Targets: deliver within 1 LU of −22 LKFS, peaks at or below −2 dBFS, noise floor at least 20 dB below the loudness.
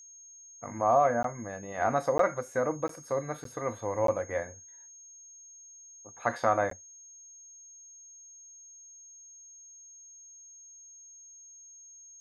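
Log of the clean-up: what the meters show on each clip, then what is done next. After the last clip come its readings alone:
number of dropouts 6; longest dropout 13 ms; interfering tone 6,500 Hz; level of the tone −49 dBFS; integrated loudness −30.0 LKFS; sample peak −12.5 dBFS; target loudness −22.0 LKFS
→ repair the gap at 0:01.23/0:02.18/0:02.88/0:03.44/0:04.07/0:06.70, 13 ms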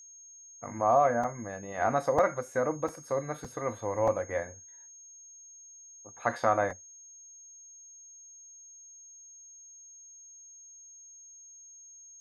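number of dropouts 0; interfering tone 6,500 Hz; level of the tone −49 dBFS
→ notch filter 6,500 Hz, Q 30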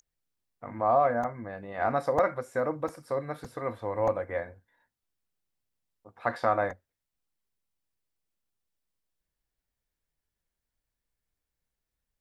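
interfering tone none found; integrated loudness −29.5 LKFS; sample peak −12.5 dBFS; target loudness −22.0 LKFS
→ level +7.5 dB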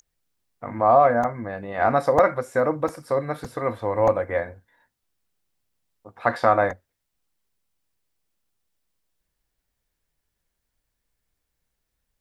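integrated loudness −22.0 LKFS; sample peak −5.0 dBFS; background noise floor −80 dBFS

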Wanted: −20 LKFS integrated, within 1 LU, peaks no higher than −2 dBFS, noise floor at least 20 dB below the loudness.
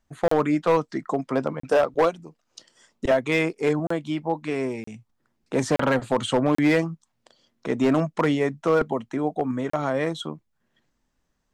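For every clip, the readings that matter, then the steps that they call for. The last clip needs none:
share of clipped samples 0.8%; peaks flattened at −13.5 dBFS; number of dropouts 7; longest dropout 34 ms; integrated loudness −24.0 LKFS; sample peak −13.5 dBFS; target loudness −20.0 LKFS
→ clipped peaks rebuilt −13.5 dBFS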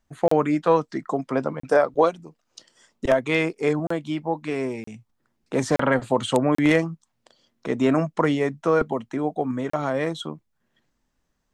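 share of clipped samples 0.0%; number of dropouts 7; longest dropout 34 ms
→ repair the gap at 0:00.28/0:01.60/0:03.87/0:04.84/0:05.76/0:06.55/0:09.70, 34 ms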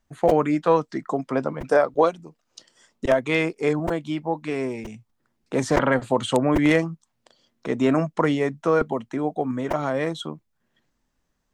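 number of dropouts 0; integrated loudness −23.5 LKFS; sample peak −4.5 dBFS; target loudness −20.0 LKFS
→ level +3.5 dB
brickwall limiter −2 dBFS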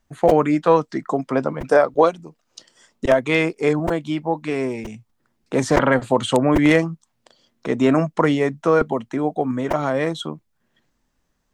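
integrated loudness −20.0 LKFS; sample peak −2.0 dBFS; background noise floor −70 dBFS

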